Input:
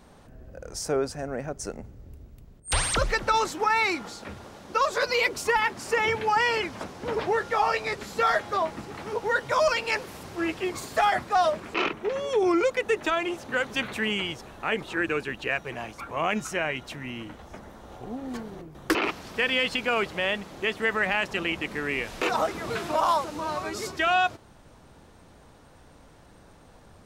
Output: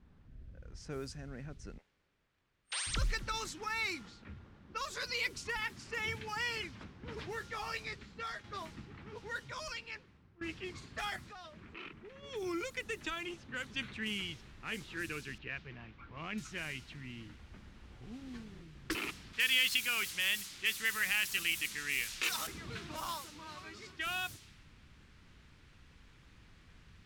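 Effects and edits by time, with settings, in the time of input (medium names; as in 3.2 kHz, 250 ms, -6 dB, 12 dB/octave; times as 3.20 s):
1.78–2.87 s: high-pass 540 Hz 24 dB/octave
7.81–8.44 s: fade out linear, to -6.5 dB
9.10–10.41 s: fade out, to -16 dB
11.16–12.23 s: compression 2:1, threshold -36 dBFS
12.77–13.34 s: three bands compressed up and down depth 40%
14.06 s: noise floor step -57 dB -43 dB
15.38–16.38 s: distance through air 220 m
19.33–22.47 s: tilt shelf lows -8.5 dB, about 940 Hz
23.16–24.06 s: bass shelf 330 Hz -8 dB
whole clip: level-controlled noise filter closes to 1.4 kHz, open at -20.5 dBFS; amplifier tone stack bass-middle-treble 6-0-2; trim +8 dB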